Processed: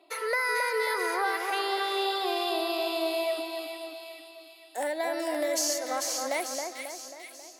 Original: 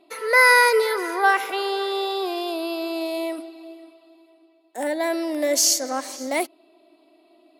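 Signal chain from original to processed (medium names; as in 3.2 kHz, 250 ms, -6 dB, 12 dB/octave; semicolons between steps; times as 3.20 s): high-pass 460 Hz 12 dB/octave; compression 6:1, threshold -27 dBFS, peak gain reduction 14.5 dB; two-band feedback delay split 1.9 kHz, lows 270 ms, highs 443 ms, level -4.5 dB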